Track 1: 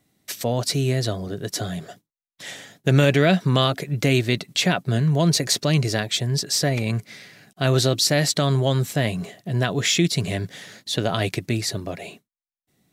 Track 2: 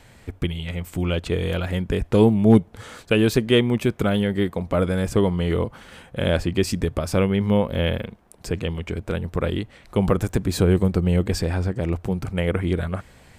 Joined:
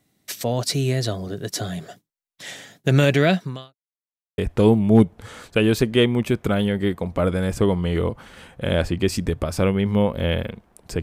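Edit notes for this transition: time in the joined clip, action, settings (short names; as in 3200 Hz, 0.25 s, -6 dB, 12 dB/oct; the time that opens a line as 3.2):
track 1
3.29–3.76 fade out quadratic
3.76–4.38 mute
4.38 switch to track 2 from 1.93 s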